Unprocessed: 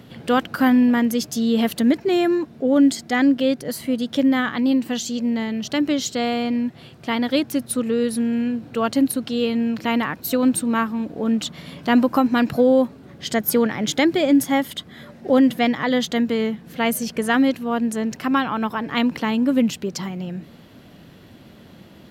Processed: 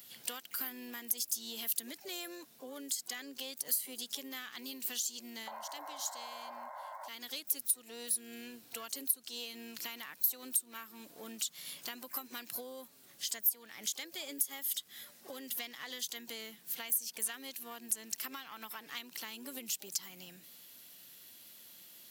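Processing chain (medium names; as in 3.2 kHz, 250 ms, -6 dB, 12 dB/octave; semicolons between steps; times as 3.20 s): painted sound noise, 5.47–7.09 s, 540–1100 Hz -15 dBFS; tilt EQ +4 dB/octave; compression 20:1, threshold -25 dBFS, peak gain reduction 23.5 dB; crackle 51 per s -44 dBFS; pre-emphasis filter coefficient 0.8; harmony voices +7 st -13 dB, +12 st -17 dB; trim -5 dB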